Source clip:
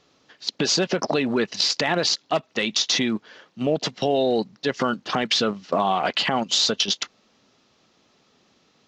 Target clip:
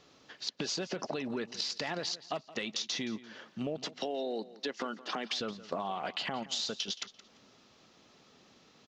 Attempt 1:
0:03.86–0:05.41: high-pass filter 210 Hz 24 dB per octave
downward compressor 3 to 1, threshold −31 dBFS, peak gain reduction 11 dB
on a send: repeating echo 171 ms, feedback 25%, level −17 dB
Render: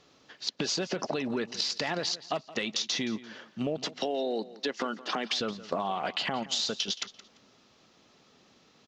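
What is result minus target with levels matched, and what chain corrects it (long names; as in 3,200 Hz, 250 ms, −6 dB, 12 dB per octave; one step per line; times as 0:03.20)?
downward compressor: peak gain reduction −4.5 dB
0:03.86–0:05.41: high-pass filter 210 Hz 24 dB per octave
downward compressor 3 to 1, threshold −38 dBFS, peak gain reduction 15.5 dB
on a send: repeating echo 171 ms, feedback 25%, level −17 dB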